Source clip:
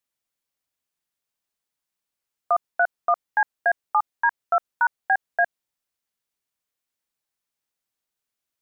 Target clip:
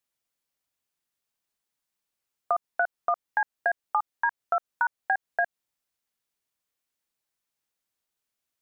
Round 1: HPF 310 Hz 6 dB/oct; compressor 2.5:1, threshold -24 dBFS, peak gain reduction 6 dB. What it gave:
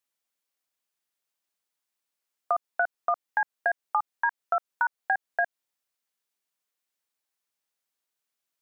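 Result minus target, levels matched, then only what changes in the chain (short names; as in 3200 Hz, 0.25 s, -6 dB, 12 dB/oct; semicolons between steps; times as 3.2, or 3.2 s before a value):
250 Hz band -3.0 dB
remove: HPF 310 Hz 6 dB/oct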